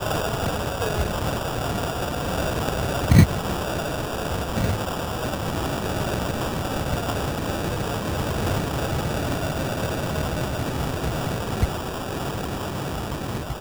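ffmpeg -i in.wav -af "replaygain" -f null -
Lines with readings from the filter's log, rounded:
track_gain = +10.0 dB
track_peak = 0.526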